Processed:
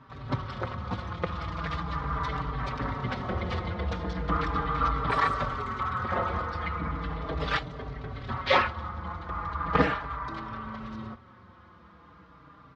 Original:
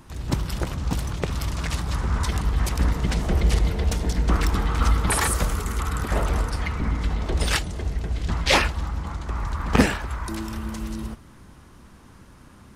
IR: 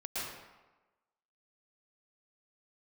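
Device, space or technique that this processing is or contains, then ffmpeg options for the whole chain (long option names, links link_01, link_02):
barber-pole flanger into a guitar amplifier: -filter_complex "[0:a]asettb=1/sr,asplit=3[link_01][link_02][link_03];[link_01]atrim=end=10.394[link_04];[link_02]atrim=start=10.39:end=10.81,asetpts=PTS-STARTPTS,afade=type=in:duration=0.004:curve=qsin,afade=type=out:start_time=0.416:duration=0.004:curve=qsin,acrossover=split=4400[link_05][link_06];[link_06]acompressor=threshold=-51dB:ratio=4:attack=1:release=60[link_07];[link_05][link_07]amix=inputs=2:normalize=0[link_08];[link_03]atrim=start=10.806[link_09];[link_04][link_08]acrossfade=duration=0.004:curve1=hsin:curve2=qsin[link_10];[link_10][link_09]acrossfade=duration=0.004:curve1=qsin:curve2=hsin,asplit=2[link_11][link_12];[link_12]adelay=4.7,afreqshift=-0.38[link_13];[link_11][link_13]amix=inputs=2:normalize=1,asoftclip=type=tanh:threshold=-10.5dB,highpass=100,equalizer=frequency=210:width_type=q:width=4:gain=-5,equalizer=frequency=360:width_type=q:width=4:gain=-5,equalizer=frequency=510:width_type=q:width=4:gain=3,equalizer=frequency=1200:width_type=q:width=4:gain=9,equalizer=frequency=2700:width_type=q:width=4:gain=-6,lowpass=frequency=3700:width=0.5412,lowpass=frequency=3700:width=1.3066"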